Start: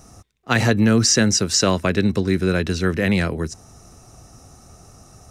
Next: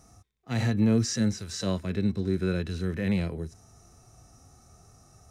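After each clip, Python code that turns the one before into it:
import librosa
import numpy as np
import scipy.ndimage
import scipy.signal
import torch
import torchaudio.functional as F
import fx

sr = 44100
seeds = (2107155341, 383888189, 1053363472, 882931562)

y = fx.notch(x, sr, hz=2800.0, q=18.0)
y = fx.hpss(y, sr, part='percussive', gain_db=-17)
y = y * 10.0 ** (-6.0 / 20.0)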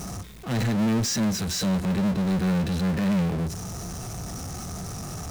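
y = fx.peak_eq(x, sr, hz=180.0, db=10.5, octaves=0.44)
y = fx.power_curve(y, sr, exponent=0.35)
y = y * 10.0 ** (-7.5 / 20.0)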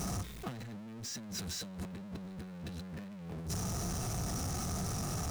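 y = fx.over_compress(x, sr, threshold_db=-33.0, ratio=-1.0)
y = y * 10.0 ** (-7.5 / 20.0)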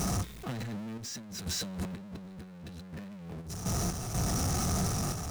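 y = fx.tremolo_random(x, sr, seeds[0], hz=4.1, depth_pct=70)
y = y * 10.0 ** (7.5 / 20.0)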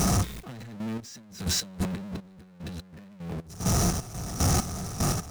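y = fx.step_gate(x, sr, bpm=75, pattern='xx..x..x.', floor_db=-12.0, edge_ms=4.5)
y = y * 10.0 ** (7.5 / 20.0)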